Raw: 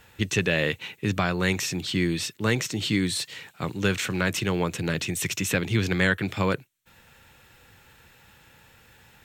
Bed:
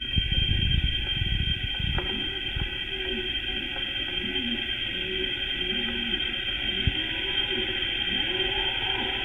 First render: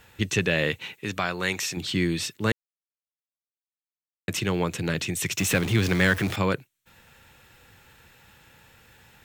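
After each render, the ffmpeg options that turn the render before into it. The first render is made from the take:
-filter_complex "[0:a]asettb=1/sr,asplit=3[s0][s1][s2];[s0]atrim=end=0.934[s3];[s1]atrim=start=0.93:end=1.77,asetpts=PTS-STARTPTS,afade=t=in:d=0.004:c=qsin,afade=t=out:st=0.836:d=0.004:c=qsin,lowshelf=f=310:g=-10.5[s4];[s2]atrim=start=1.766[s5];[s3][s4]acrossfade=d=0.004:c1=hsin:c2=qsin[s6];[s6][s5]acrossfade=d=0.004:c1=qsin:c2=hsin,asettb=1/sr,asplit=3[s7][s8][s9];[s7]atrim=end=5.384[s10];[s8]atrim=start=5.38:end=6.36,asetpts=PTS-STARTPTS,afade=t=in:d=0.004:c=qsin,afade=t=out:st=0.976:d=0.004:c=qsin,aeval=exprs='val(0)+0.5*0.0355*sgn(val(0))':c=same[s11];[s9]atrim=start=6.356[s12];[s10][s11]acrossfade=d=0.004:c1=hsin:c2=qsin[s13];[s13][s12]acrossfade=d=0.004:c1=qsin:c2=hsin,asplit=3[s14][s15][s16];[s14]atrim=end=2.52,asetpts=PTS-STARTPTS,afade=t=out:st=2.516:d=0.004:c=hsin[s17];[s15]atrim=start=2.52:end=4.28,asetpts=PTS-STARTPTS,volume=0[s18];[s16]atrim=start=4.28,asetpts=PTS-STARTPTS,afade=t=in:d=0.004:c=hsin[s19];[s17][s18][s19]concat=n=3:v=0:a=1"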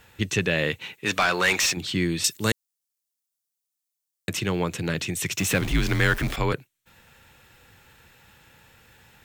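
-filter_complex "[0:a]asplit=3[s0][s1][s2];[s0]afade=t=out:st=1.05:d=0.02[s3];[s1]asplit=2[s4][s5];[s5]highpass=f=720:p=1,volume=8.91,asoftclip=type=tanh:threshold=0.266[s6];[s4][s6]amix=inputs=2:normalize=0,lowpass=f=6100:p=1,volume=0.501,afade=t=in:st=1.05:d=0.02,afade=t=out:st=1.72:d=0.02[s7];[s2]afade=t=in:st=1.72:d=0.02[s8];[s3][s7][s8]amix=inputs=3:normalize=0,asettb=1/sr,asplit=3[s9][s10][s11];[s9]atrim=end=2.244[s12];[s10]atrim=start=2.24:end=4.29,asetpts=PTS-STARTPTS,afade=t=in:d=0.004:c=qsin,afade=t=out:st=2.046:d=0.004:c=qsin,bass=f=250:g=0,treble=f=4000:g=14[s13];[s11]atrim=start=4.286[s14];[s12][s13]acrossfade=d=0.004:c1=hsin:c2=qsin[s15];[s15][s14]acrossfade=d=0.004:c1=qsin:c2=hsin,asettb=1/sr,asplit=3[s16][s17][s18];[s16]atrim=end=5.614[s19];[s17]atrim=start=5.61:end=6.53,asetpts=PTS-STARTPTS,afade=t=in:d=0.004:c=qsin,afade=t=out:st=0.916:d=0.004:c=qsin,afreqshift=-64[s20];[s18]atrim=start=6.526[s21];[s19][s20]acrossfade=d=0.004:c1=hsin:c2=qsin[s22];[s22][s21]acrossfade=d=0.004:c1=qsin:c2=hsin"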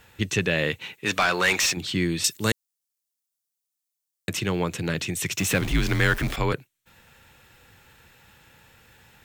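-af anull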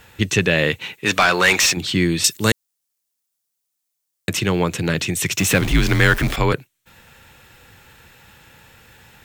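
-af "volume=2.11"

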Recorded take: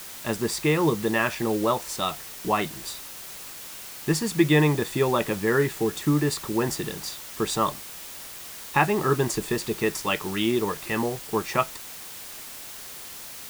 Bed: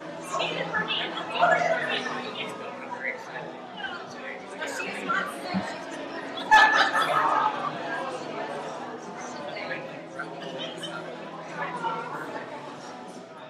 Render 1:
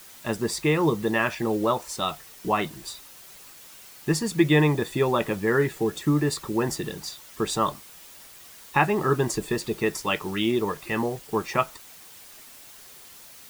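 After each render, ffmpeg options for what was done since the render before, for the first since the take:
-af "afftdn=nr=8:nf=-40"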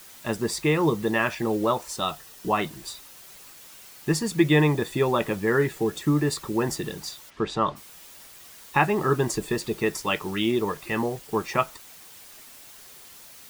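-filter_complex "[0:a]asettb=1/sr,asplit=3[s0][s1][s2];[s0]atrim=end=1.934[s3];[s1]atrim=start=1.93:end=2.57,asetpts=PTS-STARTPTS,afade=t=in:d=0.004:c=qsin,afade=t=out:st=0.636:d=0.004:c=qsin,bandreject=f=2200:w=8[s4];[s2]atrim=start=2.566[s5];[s3][s4]acrossfade=d=0.004:c1=hsin:c2=qsin[s6];[s6][s5]acrossfade=d=0.004:c1=qsin:c2=hsin,asplit=3[s7][s8][s9];[s7]afade=t=out:st=7.29:d=0.02[s10];[s8]lowpass=3500,afade=t=in:st=7.29:d=0.02,afade=t=out:st=7.75:d=0.02[s11];[s9]afade=t=in:st=7.75:d=0.02[s12];[s10][s11][s12]amix=inputs=3:normalize=0"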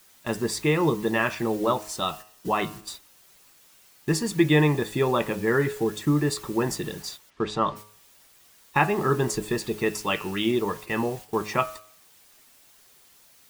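-af "agate=range=0.355:threshold=0.0112:ratio=16:detection=peak,bandreject=f=105.7:t=h:w=4,bandreject=f=211.4:t=h:w=4,bandreject=f=317.1:t=h:w=4,bandreject=f=422.8:t=h:w=4,bandreject=f=528.5:t=h:w=4,bandreject=f=634.2:t=h:w=4,bandreject=f=739.9:t=h:w=4,bandreject=f=845.6:t=h:w=4,bandreject=f=951.3:t=h:w=4,bandreject=f=1057:t=h:w=4,bandreject=f=1162.7:t=h:w=4,bandreject=f=1268.4:t=h:w=4,bandreject=f=1374.1:t=h:w=4,bandreject=f=1479.8:t=h:w=4,bandreject=f=1585.5:t=h:w=4,bandreject=f=1691.2:t=h:w=4,bandreject=f=1796.9:t=h:w=4,bandreject=f=1902.6:t=h:w=4,bandreject=f=2008.3:t=h:w=4,bandreject=f=2114:t=h:w=4,bandreject=f=2219.7:t=h:w=4,bandreject=f=2325.4:t=h:w=4,bandreject=f=2431.1:t=h:w=4,bandreject=f=2536.8:t=h:w=4,bandreject=f=2642.5:t=h:w=4,bandreject=f=2748.2:t=h:w=4,bandreject=f=2853.9:t=h:w=4,bandreject=f=2959.6:t=h:w=4,bandreject=f=3065.3:t=h:w=4"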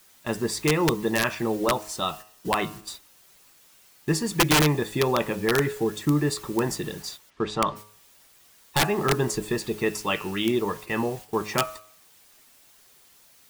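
-af "aeval=exprs='(mod(4.22*val(0)+1,2)-1)/4.22':c=same"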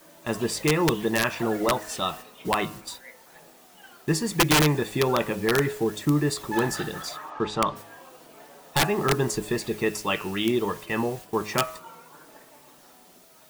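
-filter_complex "[1:a]volume=0.158[s0];[0:a][s0]amix=inputs=2:normalize=0"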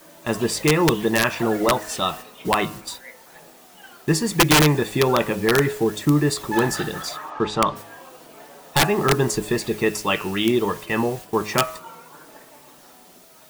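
-af "volume=1.68"

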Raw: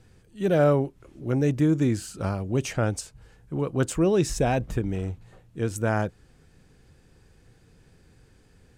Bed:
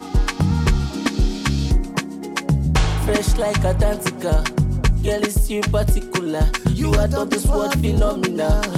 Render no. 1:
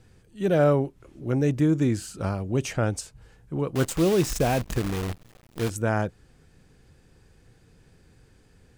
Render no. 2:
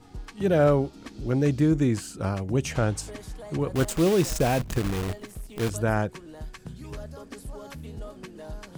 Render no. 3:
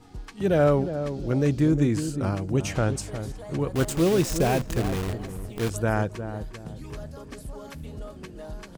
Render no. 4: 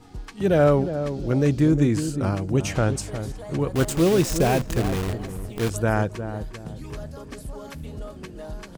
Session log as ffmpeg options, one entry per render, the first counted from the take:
-filter_complex "[0:a]asettb=1/sr,asplit=3[s0][s1][s2];[s0]atrim=end=3.754[s3];[s1]atrim=start=3.75:end=5.7,asetpts=PTS-STARTPTS,afade=t=in:d=0.004:c=qsin,afade=t=out:st=1.946:d=0.004:c=qsin,acrusher=bits=6:dc=4:mix=0:aa=0.000001[s4];[s2]atrim=start=5.696[s5];[s3][s4]acrossfade=d=0.004:c1=hsin:c2=qsin[s6];[s6][s5]acrossfade=d=0.004:c1=qsin:c2=hsin"
-filter_complex "[1:a]volume=0.0841[s0];[0:a][s0]amix=inputs=2:normalize=0"
-filter_complex "[0:a]asplit=2[s0][s1];[s1]adelay=357,lowpass=f=810:p=1,volume=0.376,asplit=2[s2][s3];[s3]adelay=357,lowpass=f=810:p=1,volume=0.37,asplit=2[s4][s5];[s5]adelay=357,lowpass=f=810:p=1,volume=0.37,asplit=2[s6][s7];[s7]adelay=357,lowpass=f=810:p=1,volume=0.37[s8];[s0][s2][s4][s6][s8]amix=inputs=5:normalize=0"
-af "volume=1.33"

